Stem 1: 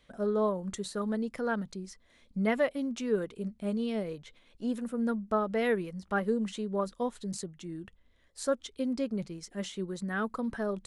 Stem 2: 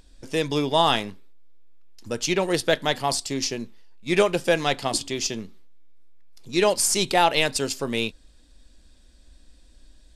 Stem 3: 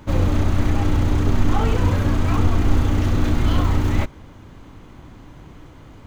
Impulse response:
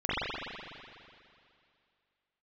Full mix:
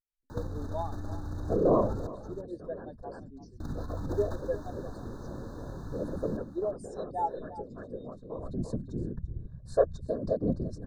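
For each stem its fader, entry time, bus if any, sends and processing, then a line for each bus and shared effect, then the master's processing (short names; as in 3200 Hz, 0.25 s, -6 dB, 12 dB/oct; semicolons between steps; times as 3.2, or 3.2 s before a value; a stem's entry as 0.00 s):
-3.0 dB, 1.30 s, no send, echo send -17.5 dB, tilt -4.5 dB/oct; comb 1.9 ms, depth 86%; whisperiser; auto duck -19 dB, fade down 0.25 s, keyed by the second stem
-9.5 dB, 0.00 s, no send, echo send -14.5 dB, soft clip -9 dBFS, distortion -21 dB; spectral expander 2.5:1
-10.0 dB, 0.30 s, muted 2.07–3.6, no send, echo send -10 dB, negative-ratio compressor -26 dBFS, ratio -1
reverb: off
echo: echo 0.343 s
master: brick-wall FIR band-stop 1800–3600 Hz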